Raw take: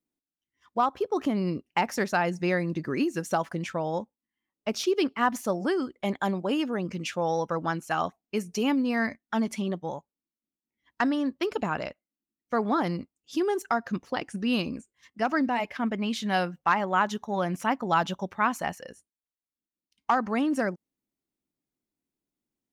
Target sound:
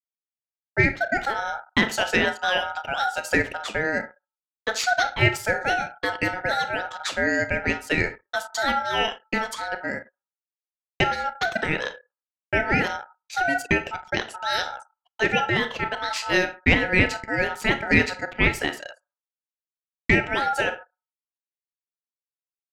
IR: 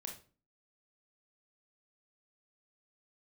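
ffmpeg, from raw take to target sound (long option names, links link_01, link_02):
-filter_complex "[0:a]bass=frequency=250:gain=-15,treble=frequency=4000:gain=3,agate=range=-34dB:threshold=-53dB:ratio=16:detection=peak,asplit=2[link_01][link_02];[1:a]atrim=start_sample=2205,lowpass=7400[link_03];[link_02][link_03]afir=irnorm=-1:irlink=0,volume=1.5dB[link_04];[link_01][link_04]amix=inputs=2:normalize=0,anlmdn=0.0398,aeval=exprs='val(0)*sin(2*PI*1100*n/s)':channel_layout=same,volume=4dB"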